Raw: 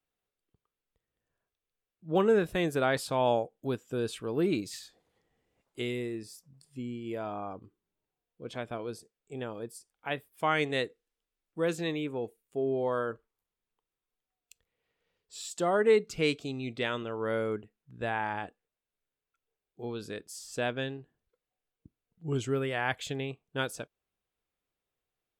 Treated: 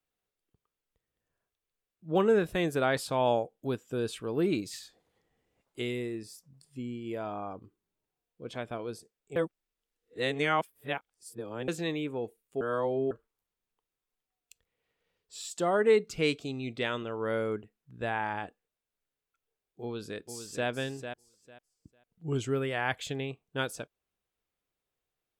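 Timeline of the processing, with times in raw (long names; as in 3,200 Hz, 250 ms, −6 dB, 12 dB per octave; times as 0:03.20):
0:09.36–0:11.68: reverse
0:12.61–0:13.11: reverse
0:19.82–0:20.68: delay throw 450 ms, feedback 20%, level −8.5 dB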